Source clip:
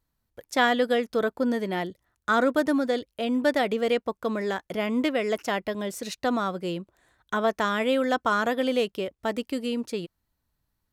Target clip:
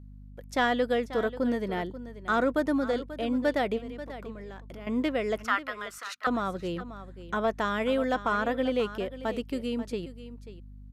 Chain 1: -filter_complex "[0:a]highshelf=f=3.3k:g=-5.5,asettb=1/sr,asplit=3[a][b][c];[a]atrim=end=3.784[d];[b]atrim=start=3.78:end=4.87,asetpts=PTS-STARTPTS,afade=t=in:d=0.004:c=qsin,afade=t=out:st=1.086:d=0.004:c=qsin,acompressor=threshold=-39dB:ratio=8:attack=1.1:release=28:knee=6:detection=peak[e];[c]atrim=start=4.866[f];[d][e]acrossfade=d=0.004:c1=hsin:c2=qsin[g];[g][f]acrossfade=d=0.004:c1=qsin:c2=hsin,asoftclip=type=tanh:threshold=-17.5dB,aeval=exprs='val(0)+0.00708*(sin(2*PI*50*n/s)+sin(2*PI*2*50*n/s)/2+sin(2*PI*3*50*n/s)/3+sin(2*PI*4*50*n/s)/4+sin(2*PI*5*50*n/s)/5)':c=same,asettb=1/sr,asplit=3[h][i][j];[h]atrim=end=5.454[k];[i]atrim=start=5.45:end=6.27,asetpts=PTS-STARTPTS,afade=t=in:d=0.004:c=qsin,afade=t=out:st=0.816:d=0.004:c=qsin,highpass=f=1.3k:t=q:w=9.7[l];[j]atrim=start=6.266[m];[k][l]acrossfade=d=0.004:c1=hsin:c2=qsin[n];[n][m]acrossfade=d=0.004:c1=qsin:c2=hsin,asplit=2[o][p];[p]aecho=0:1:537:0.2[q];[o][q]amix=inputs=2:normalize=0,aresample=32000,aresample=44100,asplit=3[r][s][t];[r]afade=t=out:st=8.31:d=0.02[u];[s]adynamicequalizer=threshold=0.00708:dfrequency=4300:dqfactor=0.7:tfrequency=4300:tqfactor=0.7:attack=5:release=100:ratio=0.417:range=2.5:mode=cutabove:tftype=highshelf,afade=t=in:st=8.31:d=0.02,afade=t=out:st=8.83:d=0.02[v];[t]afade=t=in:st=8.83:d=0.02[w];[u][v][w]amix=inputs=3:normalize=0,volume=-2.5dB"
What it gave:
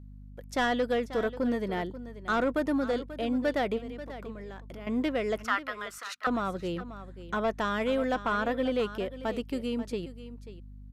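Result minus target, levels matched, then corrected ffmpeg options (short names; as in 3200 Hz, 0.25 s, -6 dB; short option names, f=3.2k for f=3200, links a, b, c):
soft clip: distortion +11 dB
-filter_complex "[0:a]highshelf=f=3.3k:g=-5.5,asettb=1/sr,asplit=3[a][b][c];[a]atrim=end=3.784[d];[b]atrim=start=3.78:end=4.87,asetpts=PTS-STARTPTS,afade=t=in:d=0.004:c=qsin,afade=t=out:st=1.086:d=0.004:c=qsin,acompressor=threshold=-39dB:ratio=8:attack=1.1:release=28:knee=6:detection=peak[e];[c]atrim=start=4.866[f];[d][e]acrossfade=d=0.004:c1=hsin:c2=qsin[g];[g][f]acrossfade=d=0.004:c1=qsin:c2=hsin,asoftclip=type=tanh:threshold=-10dB,aeval=exprs='val(0)+0.00708*(sin(2*PI*50*n/s)+sin(2*PI*2*50*n/s)/2+sin(2*PI*3*50*n/s)/3+sin(2*PI*4*50*n/s)/4+sin(2*PI*5*50*n/s)/5)':c=same,asettb=1/sr,asplit=3[h][i][j];[h]atrim=end=5.454[k];[i]atrim=start=5.45:end=6.27,asetpts=PTS-STARTPTS,afade=t=in:d=0.004:c=qsin,afade=t=out:st=0.816:d=0.004:c=qsin,highpass=f=1.3k:t=q:w=9.7[l];[j]atrim=start=6.266[m];[k][l]acrossfade=d=0.004:c1=hsin:c2=qsin[n];[n][m]acrossfade=d=0.004:c1=qsin:c2=hsin,asplit=2[o][p];[p]aecho=0:1:537:0.2[q];[o][q]amix=inputs=2:normalize=0,aresample=32000,aresample=44100,asplit=3[r][s][t];[r]afade=t=out:st=8.31:d=0.02[u];[s]adynamicequalizer=threshold=0.00708:dfrequency=4300:dqfactor=0.7:tfrequency=4300:tqfactor=0.7:attack=5:release=100:ratio=0.417:range=2.5:mode=cutabove:tftype=highshelf,afade=t=in:st=8.31:d=0.02,afade=t=out:st=8.83:d=0.02[v];[t]afade=t=in:st=8.83:d=0.02[w];[u][v][w]amix=inputs=3:normalize=0,volume=-2.5dB"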